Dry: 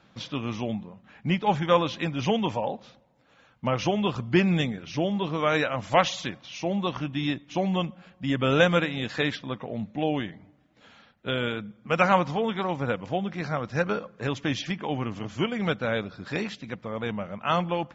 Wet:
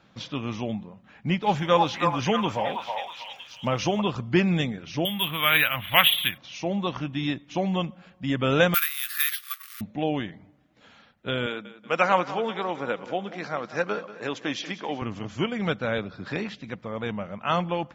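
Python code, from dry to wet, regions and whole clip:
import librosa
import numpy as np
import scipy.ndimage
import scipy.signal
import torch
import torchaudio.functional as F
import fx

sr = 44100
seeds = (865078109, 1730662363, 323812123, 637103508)

y = fx.high_shelf(x, sr, hz=6600.0, db=9.0, at=(1.42, 4.0), fade=0.02)
y = fx.dmg_crackle(y, sr, seeds[0], per_s=370.0, level_db=-50.0, at=(1.42, 4.0), fade=0.02)
y = fx.echo_stepped(y, sr, ms=321, hz=920.0, octaves=0.7, feedback_pct=70, wet_db=0, at=(1.42, 4.0), fade=0.02)
y = fx.chain(y, sr, fx.curve_eq(hz=(110.0, 280.0, 440.0, 3400.0, 5100.0), db=(0, -7, -11, 15, -25)),
    fx.resample_bad(factor=3, down='filtered', up='hold'), at=(5.05, 6.38))
y = fx.chain(y, sr, fx.quant_companded(bits=4),
    fx.brickwall_highpass(low_hz=1100.0),
    fx.resample_bad(factor=3, down='filtered', up='zero_stuff'), at=(8.74, 9.81))
y = fx.chain(y, sr, fx.highpass(hz=270.0, slope=12),
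    fx.echo_feedback(ms=187, feedback_pct=45, wet_db=-15.0), at=(11.46, 15.02))
y = fx.chain(y, sr, fx.air_absorb(metres=82.0),
    fx.band_squash(depth_pct=40), at=(15.98, 16.61))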